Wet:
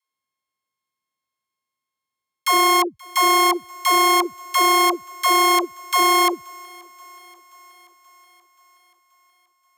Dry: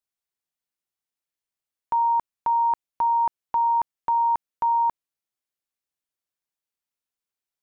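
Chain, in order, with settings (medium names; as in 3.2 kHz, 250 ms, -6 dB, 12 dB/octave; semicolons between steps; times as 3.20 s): sorted samples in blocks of 32 samples; high-pass 110 Hz; on a send: thinning echo 413 ms, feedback 64%, high-pass 410 Hz, level -24 dB; on the sum: tape speed -22%; phase dispersion lows, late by 140 ms, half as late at 330 Hz; trim +5 dB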